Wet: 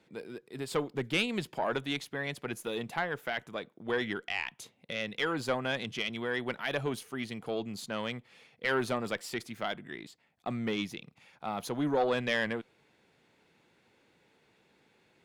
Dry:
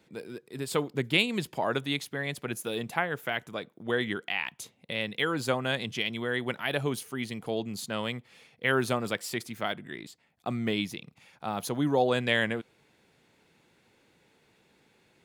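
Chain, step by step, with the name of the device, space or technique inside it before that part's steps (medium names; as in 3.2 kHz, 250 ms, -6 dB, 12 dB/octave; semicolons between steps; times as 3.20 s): tube preamp driven hard (valve stage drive 18 dB, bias 0.35; bass shelf 190 Hz -4 dB; treble shelf 6.9 kHz -8.5 dB)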